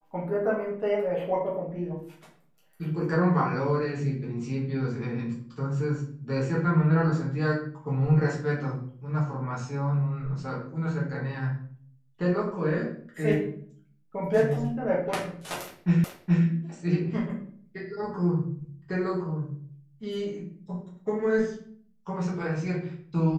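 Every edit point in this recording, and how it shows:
16.04 s: repeat of the last 0.42 s

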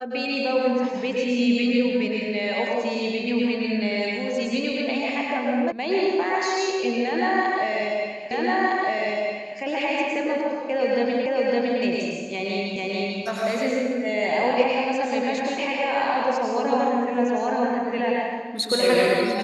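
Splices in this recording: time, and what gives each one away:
5.72 s: sound stops dead
8.31 s: repeat of the last 1.26 s
11.26 s: repeat of the last 0.56 s
12.76 s: repeat of the last 0.44 s

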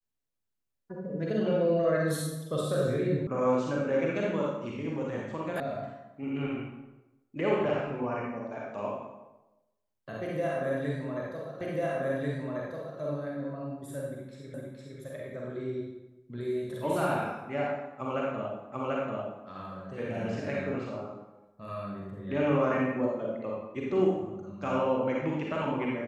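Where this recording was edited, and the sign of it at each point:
3.27 s: sound stops dead
5.60 s: sound stops dead
11.61 s: repeat of the last 1.39 s
14.54 s: repeat of the last 0.46 s
18.72 s: repeat of the last 0.74 s

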